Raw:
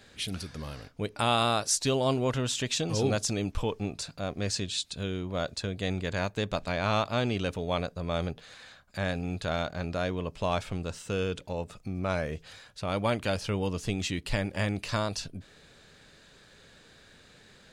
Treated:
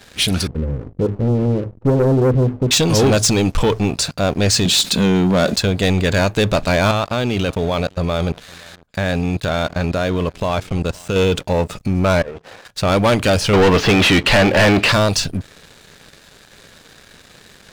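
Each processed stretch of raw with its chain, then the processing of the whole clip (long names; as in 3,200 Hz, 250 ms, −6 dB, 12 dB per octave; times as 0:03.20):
0:00.47–0:02.71: Chebyshev low-pass filter 520 Hz, order 6 + low-shelf EQ 71 Hz +5.5 dB + mains-hum notches 50/100/150/200/250/300/350/400 Hz
0:04.65–0:05.56: low shelf with overshoot 150 Hz −7.5 dB, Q 3 + envelope flattener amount 50%
0:06.91–0:11.16: output level in coarse steps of 18 dB + single-tap delay 510 ms −22 dB
0:12.22–0:12.65: compressor whose output falls as the input rises −39 dBFS, ratio −0.5 + resonant band-pass 540 Hz, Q 0.98
0:13.53–0:14.92: mid-hump overdrive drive 25 dB, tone 5,900 Hz, clips at −13.5 dBFS + high-frequency loss of the air 280 metres
whole clip: hum removal 55.85 Hz, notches 2; leveller curve on the samples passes 3; level +7 dB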